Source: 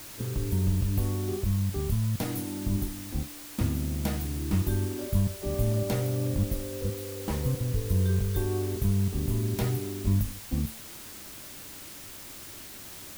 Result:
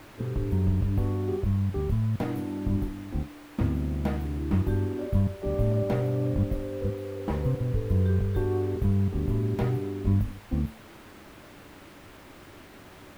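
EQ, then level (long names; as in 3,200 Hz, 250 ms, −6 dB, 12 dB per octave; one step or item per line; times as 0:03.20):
bass and treble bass −3 dB, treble −11 dB
high-shelf EQ 2,400 Hz −10.5 dB
+4.0 dB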